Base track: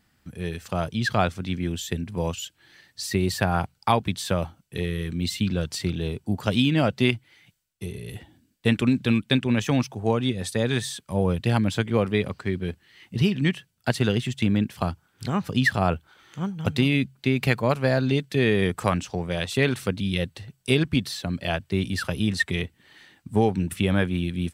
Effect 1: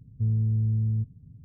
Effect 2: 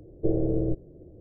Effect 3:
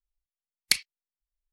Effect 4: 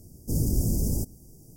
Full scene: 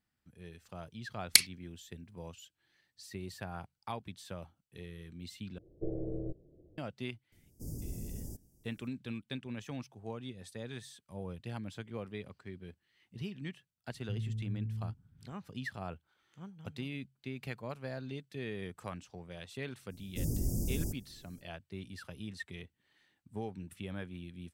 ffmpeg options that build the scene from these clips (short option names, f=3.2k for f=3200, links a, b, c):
-filter_complex "[4:a]asplit=2[a][b];[0:a]volume=-19.5dB[c];[3:a]highshelf=f=6.2k:g=6.5[d];[c]asplit=2[e][f];[e]atrim=end=5.584[g];[2:a]atrim=end=1.2,asetpts=PTS-STARTPTS,volume=-12.5dB[h];[f]atrim=start=6.776[i];[d]atrim=end=1.52,asetpts=PTS-STARTPTS,volume=-1.5dB,afade=t=in:d=0.004:c=hsin,afade=t=out:st=1.516:d=0.004:c=hsin,adelay=640[j];[a]atrim=end=1.56,asetpts=PTS-STARTPTS,volume=-16.5dB,afade=t=in:d=0.004:c=hsin,afade=t=out:st=1.556:d=0.004:c=hsin,adelay=7320[k];[1:a]atrim=end=1.44,asetpts=PTS-STARTPTS,volume=-13dB,afade=t=in:d=0.004:c=hsin,afade=t=out:st=1.436:d=0.004:c=hsin,adelay=13890[l];[b]atrim=end=1.56,asetpts=PTS-STARTPTS,volume=-8.5dB,afade=t=in:d=0.05,afade=t=out:st=1.51:d=0.05,adelay=876708S[m];[g][h]acrossfade=d=0.004:c1=hsin:c2=hsin[n];[n][i]acrossfade=d=0.004:c1=hsin:c2=hsin[o];[o][j][k][l][m]amix=inputs=5:normalize=0"